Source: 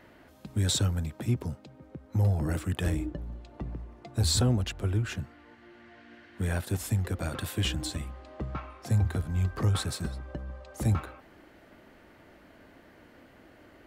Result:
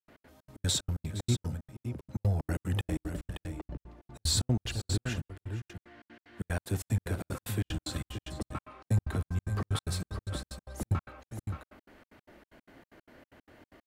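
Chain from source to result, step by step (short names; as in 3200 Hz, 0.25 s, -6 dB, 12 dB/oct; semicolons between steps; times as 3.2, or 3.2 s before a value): tapped delay 55/466/575 ms -20/-15.5/-8 dB; step gate ".x.xx.x.xx" 187 bpm -60 dB; gain -1.5 dB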